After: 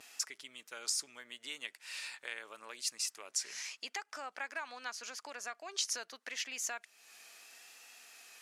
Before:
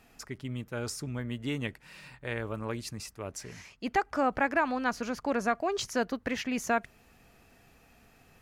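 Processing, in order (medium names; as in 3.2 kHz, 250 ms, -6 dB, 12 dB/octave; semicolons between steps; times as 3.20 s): compression 2.5:1, threshold -46 dBFS, peak gain reduction 16 dB; differentiator; vibrato 0.8 Hz 46 cents; band-pass 310–7700 Hz; trim +16.5 dB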